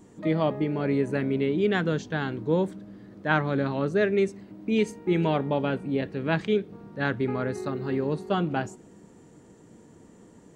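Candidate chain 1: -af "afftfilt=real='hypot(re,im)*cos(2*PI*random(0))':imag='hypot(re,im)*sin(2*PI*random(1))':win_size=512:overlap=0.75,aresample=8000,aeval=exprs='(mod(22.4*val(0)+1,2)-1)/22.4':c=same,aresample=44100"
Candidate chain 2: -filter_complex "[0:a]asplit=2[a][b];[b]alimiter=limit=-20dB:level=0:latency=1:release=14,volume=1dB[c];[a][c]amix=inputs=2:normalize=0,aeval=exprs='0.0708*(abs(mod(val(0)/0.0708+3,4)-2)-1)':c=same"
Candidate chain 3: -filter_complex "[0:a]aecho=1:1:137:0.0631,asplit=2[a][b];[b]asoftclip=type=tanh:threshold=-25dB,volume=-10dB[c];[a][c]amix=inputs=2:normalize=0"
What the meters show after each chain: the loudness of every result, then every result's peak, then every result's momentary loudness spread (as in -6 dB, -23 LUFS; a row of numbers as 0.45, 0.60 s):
-34.5, -29.5, -25.5 LUFS; -22.0, -23.0, -8.0 dBFS; 6, 18, 6 LU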